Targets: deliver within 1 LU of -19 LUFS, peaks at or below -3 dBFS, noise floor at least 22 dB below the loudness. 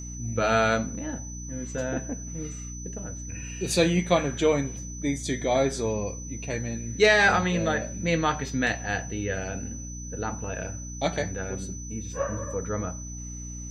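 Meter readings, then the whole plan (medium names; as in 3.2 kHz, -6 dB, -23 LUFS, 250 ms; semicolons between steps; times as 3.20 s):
hum 60 Hz; highest harmonic 300 Hz; hum level -36 dBFS; steady tone 6 kHz; tone level -40 dBFS; loudness -27.5 LUFS; peak level -6.5 dBFS; loudness target -19.0 LUFS
-> de-hum 60 Hz, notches 5; band-stop 6 kHz, Q 30; trim +8.5 dB; peak limiter -3 dBFS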